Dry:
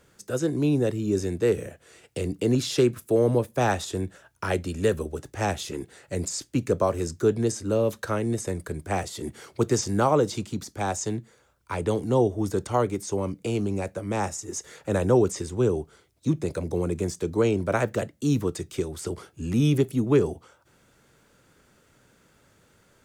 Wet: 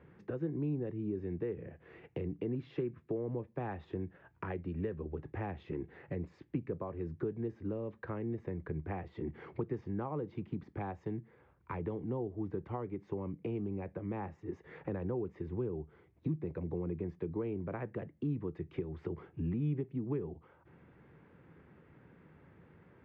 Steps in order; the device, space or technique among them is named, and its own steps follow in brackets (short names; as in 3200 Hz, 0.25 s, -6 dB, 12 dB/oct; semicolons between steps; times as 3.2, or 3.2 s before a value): bass amplifier (compressor 4:1, threshold -39 dBFS, peak gain reduction 20 dB; speaker cabinet 63–2100 Hz, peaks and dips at 73 Hz +6 dB, 160 Hz +7 dB, 340 Hz +3 dB, 610 Hz -6 dB, 1400 Hz -8 dB); gain +1 dB